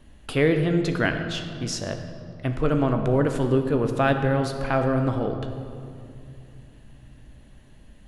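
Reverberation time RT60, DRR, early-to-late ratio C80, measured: 2.5 s, 5.5 dB, 8.0 dB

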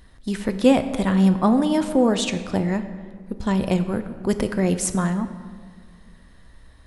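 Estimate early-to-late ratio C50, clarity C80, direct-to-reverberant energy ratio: 11.0 dB, 12.5 dB, 9.0 dB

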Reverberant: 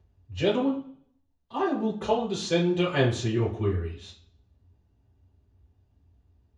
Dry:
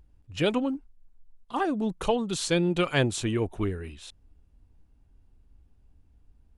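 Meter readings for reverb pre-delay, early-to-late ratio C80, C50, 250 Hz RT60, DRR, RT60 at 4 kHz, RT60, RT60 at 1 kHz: 3 ms, 12.0 dB, 7.5 dB, 0.60 s, −11.0 dB, 0.50 s, 0.55 s, 0.55 s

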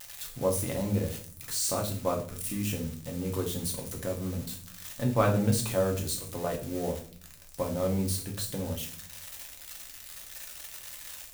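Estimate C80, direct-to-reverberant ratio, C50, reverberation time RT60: 15.0 dB, 0.5 dB, 10.0 dB, 0.45 s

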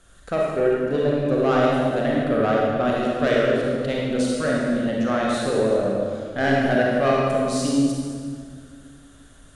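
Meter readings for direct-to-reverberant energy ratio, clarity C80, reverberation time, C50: −4.0 dB, 0.0 dB, 2.0 s, −2.0 dB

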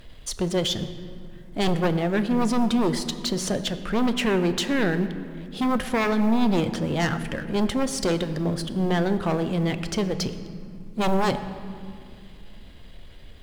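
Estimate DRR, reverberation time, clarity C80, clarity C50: 9.0 dB, 2.3 s, 12.0 dB, 11.5 dB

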